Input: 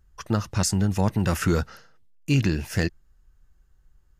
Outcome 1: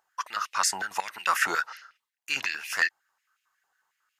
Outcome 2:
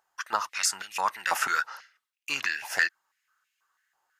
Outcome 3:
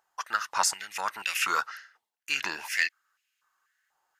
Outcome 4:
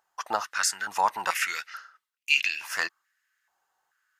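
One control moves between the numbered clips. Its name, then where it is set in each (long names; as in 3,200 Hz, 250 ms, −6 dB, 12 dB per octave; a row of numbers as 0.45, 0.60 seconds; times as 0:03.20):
high-pass on a step sequencer, speed: 11, 6.1, 4.1, 2.3 Hertz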